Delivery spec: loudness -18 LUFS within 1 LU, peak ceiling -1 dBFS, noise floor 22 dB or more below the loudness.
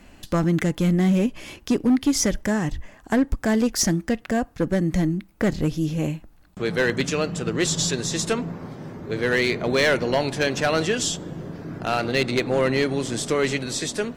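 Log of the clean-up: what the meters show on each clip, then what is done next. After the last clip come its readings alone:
clipped 0.9%; flat tops at -13.5 dBFS; loudness -23.0 LUFS; peak -13.5 dBFS; loudness target -18.0 LUFS
-> clip repair -13.5 dBFS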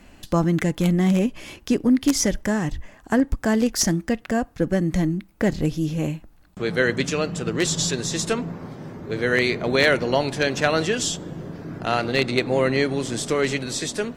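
clipped 0.0%; loudness -22.5 LUFS; peak -4.5 dBFS; loudness target -18.0 LUFS
-> gain +4.5 dB; limiter -1 dBFS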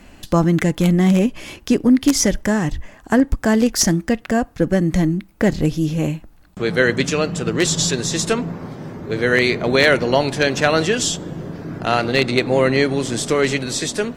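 loudness -18.0 LUFS; peak -1.0 dBFS; noise floor -47 dBFS

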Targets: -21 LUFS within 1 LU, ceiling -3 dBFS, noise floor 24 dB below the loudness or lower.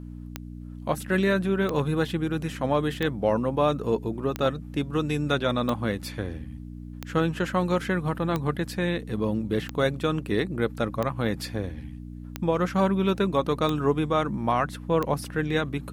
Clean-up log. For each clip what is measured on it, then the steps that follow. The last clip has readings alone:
clicks 12; hum 60 Hz; harmonics up to 300 Hz; hum level -37 dBFS; loudness -26.5 LUFS; peak -10.0 dBFS; loudness target -21.0 LUFS
-> de-click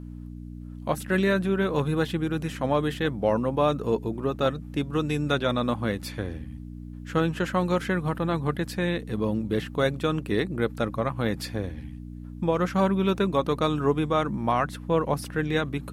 clicks 0; hum 60 Hz; harmonics up to 300 Hz; hum level -37 dBFS
-> de-hum 60 Hz, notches 5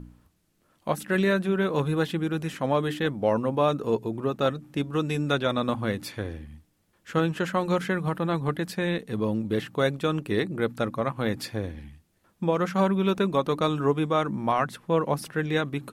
hum none; loudness -27.0 LUFS; peak -10.0 dBFS; loudness target -21.0 LUFS
-> gain +6 dB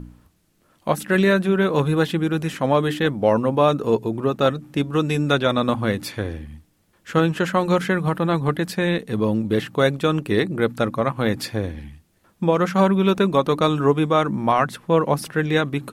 loudness -21.0 LUFS; peak -4.0 dBFS; noise floor -62 dBFS

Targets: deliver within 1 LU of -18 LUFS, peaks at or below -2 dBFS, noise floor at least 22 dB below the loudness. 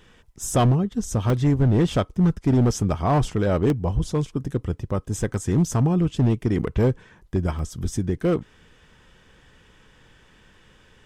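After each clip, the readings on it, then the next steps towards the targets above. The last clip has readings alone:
clipped 1.7%; flat tops at -13.0 dBFS; dropouts 4; longest dropout 1.2 ms; loudness -23.0 LUFS; peak -13.0 dBFS; loudness target -18.0 LUFS
-> clip repair -13 dBFS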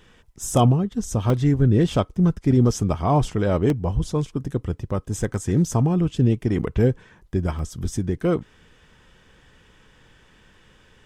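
clipped 0.0%; dropouts 4; longest dropout 1.2 ms
-> interpolate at 1.3/3.7/5.34/7.59, 1.2 ms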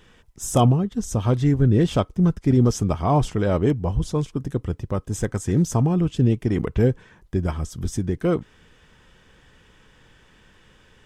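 dropouts 0; loudness -22.0 LUFS; peak -4.5 dBFS; loudness target -18.0 LUFS
-> gain +4 dB; limiter -2 dBFS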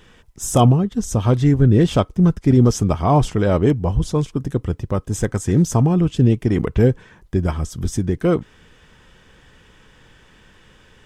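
loudness -18.0 LUFS; peak -2.0 dBFS; noise floor -52 dBFS

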